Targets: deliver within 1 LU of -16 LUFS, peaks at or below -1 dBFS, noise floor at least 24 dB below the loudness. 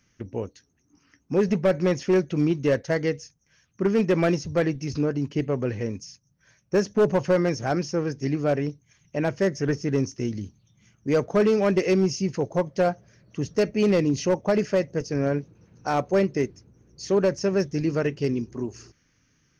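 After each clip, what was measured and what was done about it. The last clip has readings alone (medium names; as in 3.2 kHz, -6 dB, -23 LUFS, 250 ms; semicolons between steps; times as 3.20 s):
clipped samples 0.9%; clipping level -14.5 dBFS; loudness -25.0 LUFS; peak level -14.5 dBFS; loudness target -16.0 LUFS
-> clip repair -14.5 dBFS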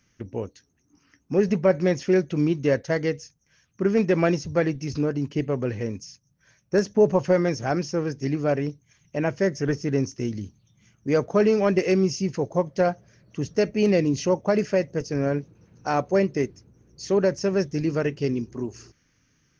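clipped samples 0.0%; loudness -24.5 LUFS; peak level -7.0 dBFS; loudness target -16.0 LUFS
-> trim +8.5 dB; peak limiter -1 dBFS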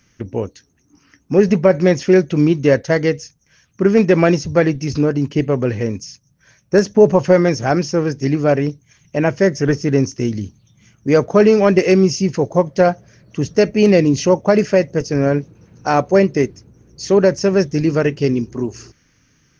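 loudness -16.0 LUFS; peak level -1.0 dBFS; noise floor -59 dBFS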